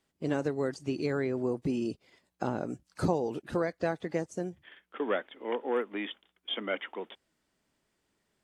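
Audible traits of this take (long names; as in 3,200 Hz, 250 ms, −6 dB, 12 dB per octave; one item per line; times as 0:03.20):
background noise floor −79 dBFS
spectral slope −5.0 dB per octave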